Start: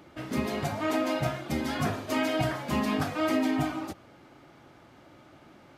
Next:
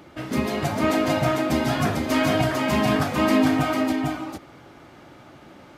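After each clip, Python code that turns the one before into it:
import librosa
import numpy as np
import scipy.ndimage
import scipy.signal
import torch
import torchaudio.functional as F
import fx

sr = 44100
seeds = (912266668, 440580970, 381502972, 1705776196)

y = x + 10.0 ** (-3.0 / 20.0) * np.pad(x, (int(449 * sr / 1000.0), 0))[:len(x)]
y = y * librosa.db_to_amplitude(5.5)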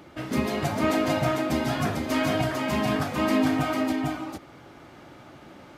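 y = fx.rider(x, sr, range_db=3, speed_s=2.0)
y = y * librosa.db_to_amplitude(-3.5)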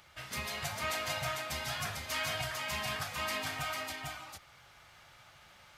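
y = fx.tone_stack(x, sr, knobs='10-0-10')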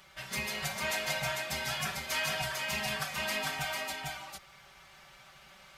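y = x + 0.99 * np.pad(x, (int(5.2 * sr / 1000.0), 0))[:len(x)]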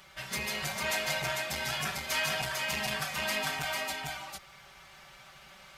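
y = fx.transformer_sat(x, sr, knee_hz=1000.0)
y = y * librosa.db_to_amplitude(2.5)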